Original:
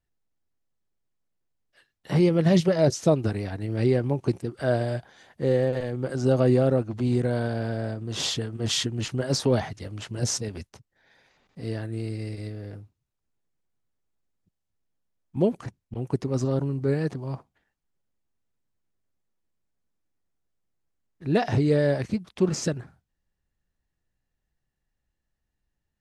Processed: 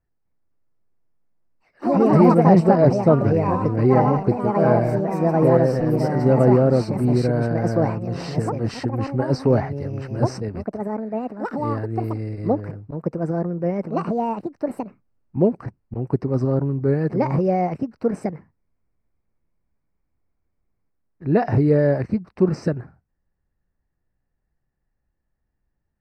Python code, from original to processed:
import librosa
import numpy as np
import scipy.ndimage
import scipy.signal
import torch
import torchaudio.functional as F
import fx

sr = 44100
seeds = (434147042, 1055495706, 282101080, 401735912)

y = fx.echo_pitch(x, sr, ms=257, semitones=4, count=3, db_per_echo=-3.0)
y = np.convolve(y, np.full(13, 1.0 / 13))[:len(y)]
y = y * 10.0 ** (5.0 / 20.0)